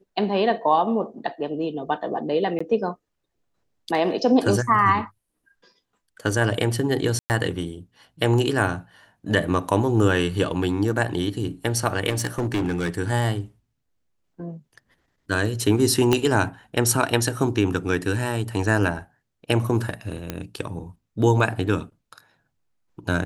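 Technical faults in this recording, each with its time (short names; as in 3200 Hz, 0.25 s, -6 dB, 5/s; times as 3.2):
2.59–2.6 gap 15 ms
7.19–7.3 gap 0.109 s
12.09–12.89 clipped -19.5 dBFS
16.13 pop -5 dBFS
20.3 pop -12 dBFS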